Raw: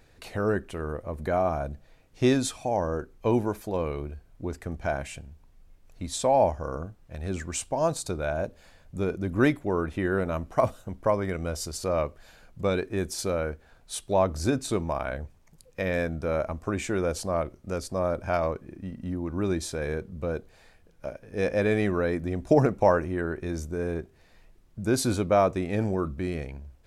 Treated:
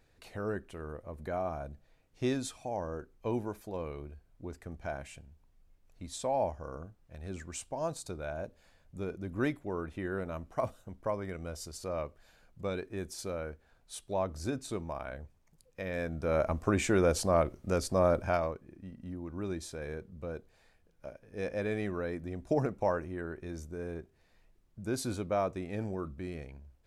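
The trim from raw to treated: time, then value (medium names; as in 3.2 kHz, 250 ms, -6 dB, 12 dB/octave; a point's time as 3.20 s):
15.89 s -9.5 dB
16.51 s +1 dB
18.17 s +1 dB
18.58 s -9.5 dB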